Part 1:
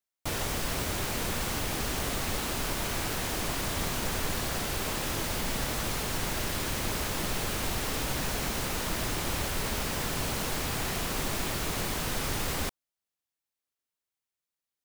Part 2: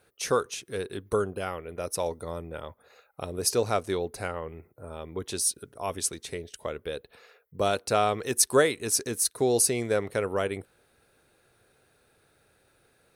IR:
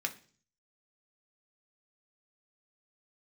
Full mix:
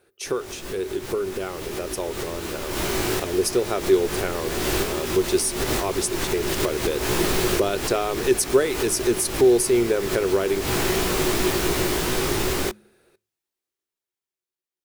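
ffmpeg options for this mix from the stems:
-filter_complex "[0:a]dynaudnorm=f=250:g=11:m=6dB,flanger=delay=16:depth=3.7:speed=2.8,volume=-1dB,asplit=2[a][b];[b]volume=-23dB[c];[1:a]acompressor=threshold=-28dB:ratio=3,volume=-1.5dB,asplit=3[d][e][f];[e]volume=-13.5dB[g];[f]apad=whole_len=654621[h];[a][h]sidechaincompress=threshold=-46dB:ratio=4:attack=29:release=125[i];[2:a]atrim=start_sample=2205[j];[c][g]amix=inputs=2:normalize=0[k];[k][j]afir=irnorm=-1:irlink=0[l];[i][d][l]amix=inputs=3:normalize=0,equalizer=f=370:t=o:w=0.33:g=13.5,bandreject=f=105.1:t=h:w=4,bandreject=f=210.2:t=h:w=4,dynaudnorm=f=520:g=11:m=5.5dB"

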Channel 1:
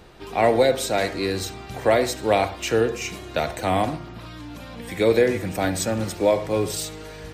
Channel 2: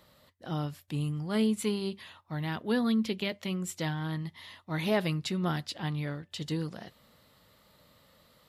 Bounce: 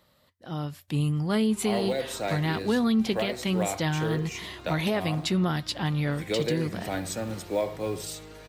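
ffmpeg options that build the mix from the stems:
-filter_complex "[0:a]acrusher=bits=8:mode=log:mix=0:aa=0.000001,adelay=1300,volume=-8dB[a];[1:a]dynaudnorm=f=130:g=13:m=11.5dB,volume=-3dB[b];[a][b]amix=inputs=2:normalize=0,alimiter=limit=-16.5dB:level=0:latency=1:release=319"

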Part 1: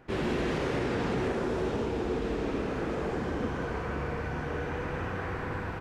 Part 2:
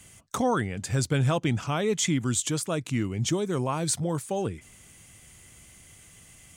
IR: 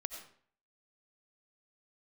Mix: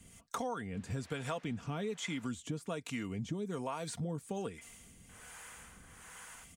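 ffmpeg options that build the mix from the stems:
-filter_complex "[0:a]highpass=1.1k,adelay=650,volume=-12.5dB,asplit=3[a][b][c];[a]atrim=end=2.28,asetpts=PTS-STARTPTS,afade=t=out:st=2.276:d=0.004:c=hsin[d];[b]atrim=start=2.28:end=5.09,asetpts=PTS-STARTPTS,volume=0[e];[c]atrim=start=5.09,asetpts=PTS-STARTPTS,afade=t=in:d=0.004:c=hsin[f];[d][e][f]concat=n=3:v=0:a=1[g];[1:a]acrossover=split=2900[h][i];[i]acompressor=threshold=-37dB:ratio=4:attack=1:release=60[j];[h][j]amix=inputs=2:normalize=0,aecho=1:1:4.3:0.46,volume=-0.5dB[k];[g][k]amix=inputs=2:normalize=0,acrossover=split=430[l][m];[l]aeval=exprs='val(0)*(1-0.7/2+0.7/2*cos(2*PI*1.2*n/s))':c=same[n];[m]aeval=exprs='val(0)*(1-0.7/2-0.7/2*cos(2*PI*1.2*n/s))':c=same[o];[n][o]amix=inputs=2:normalize=0,acompressor=threshold=-35dB:ratio=6"

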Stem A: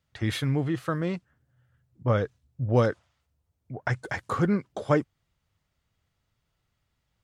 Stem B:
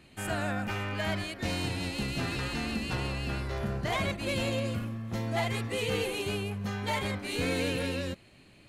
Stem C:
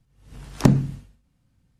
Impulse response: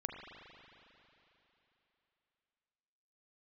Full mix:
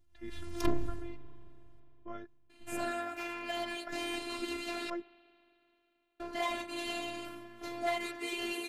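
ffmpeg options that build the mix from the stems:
-filter_complex "[0:a]highpass=100,bass=f=250:g=5,treble=f=4k:g=-6,volume=-13.5dB[a];[1:a]flanger=delay=3.5:depth=3.9:regen=-49:speed=0.32:shape=sinusoidal,highpass=190,adelay=2500,volume=2dB,asplit=3[b][c][d];[b]atrim=end=4.9,asetpts=PTS-STARTPTS,afade=t=out:st=4.896:d=0.004:c=hsin[e];[c]atrim=start=4.9:end=6.2,asetpts=PTS-STARTPTS,volume=0[f];[d]atrim=start=6.2,asetpts=PTS-STARTPTS,afade=t=in:d=0.004:c=hsin[g];[e][f][g]concat=n=3:v=0:a=1,asplit=2[h][i];[i]volume=-14dB[j];[2:a]equalizer=f=78:w=0.46:g=9.5,aeval=exprs='(tanh(6.31*val(0)+0.4)-tanh(0.4))/6.31':c=same,volume=-3.5dB,asplit=2[k][l];[l]volume=-9dB[m];[3:a]atrim=start_sample=2205[n];[j][m]amix=inputs=2:normalize=0[o];[o][n]afir=irnorm=-1:irlink=0[p];[a][h][k][p]amix=inputs=4:normalize=0,afftfilt=real='hypot(re,im)*cos(PI*b)':imag='0':win_size=512:overlap=0.75"

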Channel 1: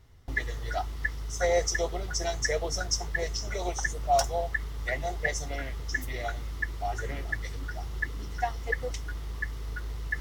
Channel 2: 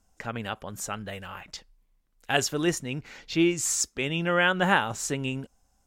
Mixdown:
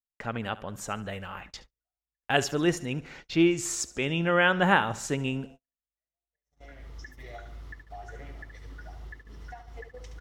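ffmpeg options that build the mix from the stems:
-filter_complex "[0:a]alimiter=limit=-23dB:level=0:latency=1:release=297,acompressor=threshold=-34dB:ratio=3,adelay=1100,volume=-5.5dB,afade=t=in:st=6.23:d=0.76:silence=0.237137,asplit=2[a][b];[b]volume=-8.5dB[c];[1:a]volume=1dB,asplit=3[d][e][f];[e]volume=-18dB[g];[f]apad=whole_len=498595[h];[a][h]sidechaincompress=threshold=-30dB:ratio=8:attack=16:release=1460[i];[c][g]amix=inputs=2:normalize=0,aecho=0:1:72|144|216|288|360|432|504:1|0.49|0.24|0.118|0.0576|0.0282|0.0138[j];[i][d][j]amix=inputs=3:normalize=0,agate=range=-43dB:threshold=-45dB:ratio=16:detection=peak,highshelf=f=4.7k:g=-9"

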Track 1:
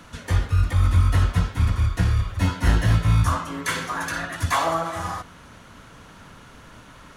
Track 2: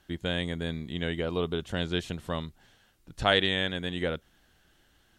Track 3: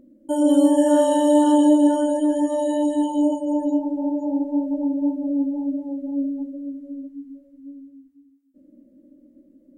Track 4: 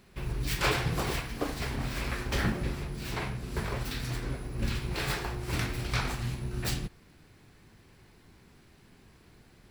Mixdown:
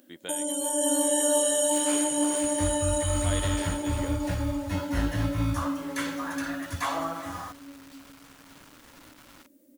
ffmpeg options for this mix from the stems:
-filter_complex "[0:a]acrusher=bits=6:mix=0:aa=0.000001,adelay=2300,volume=-7.5dB[a];[1:a]volume=-5.5dB,asplit=2[b][c];[2:a]crystalizer=i=10:c=0,volume=-4dB,asplit=2[d][e];[e]volume=-8dB[f];[3:a]adelay=1250,volume=-1dB[g];[c]apad=whole_len=487555[h];[g][h]sidechaingate=range=-22dB:threshold=-59dB:ratio=16:detection=peak[i];[b][d][i]amix=inputs=3:normalize=0,highpass=280,acompressor=threshold=-30dB:ratio=3,volume=0dB[j];[f]aecho=0:1:342|684|1026|1368|1710|2052:1|0.46|0.212|0.0973|0.0448|0.0206[k];[a][j][k]amix=inputs=3:normalize=0,lowshelf=f=370:g=-3.5"

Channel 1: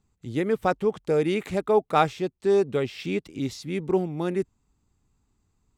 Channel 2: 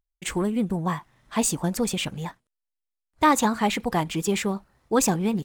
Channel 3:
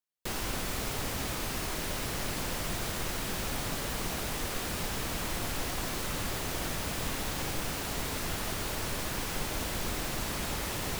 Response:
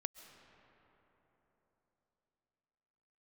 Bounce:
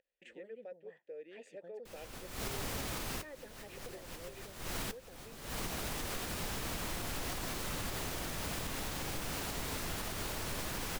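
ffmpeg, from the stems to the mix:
-filter_complex "[0:a]highpass=f=170:w=0.5412,highpass=f=170:w=1.3066,volume=-11.5dB[a];[1:a]acompressor=mode=upward:threshold=-24dB:ratio=2.5,volume=-13dB,asplit=2[b][c];[2:a]dynaudnorm=f=130:g=13:m=4dB,adelay=1600,volume=-3dB[d];[c]apad=whole_len=555493[e];[d][e]sidechaincompress=threshold=-52dB:ratio=12:attack=10:release=213[f];[a][b]amix=inputs=2:normalize=0,asplit=3[g][h][i];[g]bandpass=f=530:t=q:w=8,volume=0dB[j];[h]bandpass=f=1.84k:t=q:w=8,volume=-6dB[k];[i]bandpass=f=2.48k:t=q:w=8,volume=-9dB[l];[j][k][l]amix=inputs=3:normalize=0,alimiter=level_in=15.5dB:limit=-24dB:level=0:latency=1:release=481,volume=-15.5dB,volume=0dB[m];[f][m]amix=inputs=2:normalize=0,alimiter=level_in=4.5dB:limit=-24dB:level=0:latency=1:release=224,volume=-4.5dB"

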